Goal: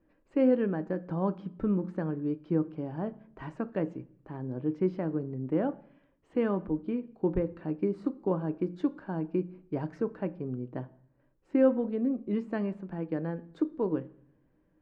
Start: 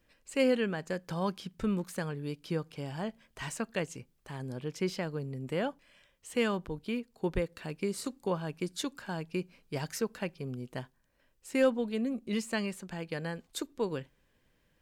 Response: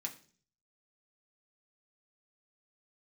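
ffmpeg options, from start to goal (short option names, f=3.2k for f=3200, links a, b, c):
-filter_complex "[0:a]lowpass=1k,equalizer=f=310:w=6:g=13.5,asplit=2[a][b];[1:a]atrim=start_sample=2205,asetrate=29988,aresample=44100[c];[b][c]afir=irnorm=-1:irlink=0,volume=-8dB[d];[a][d]amix=inputs=2:normalize=0"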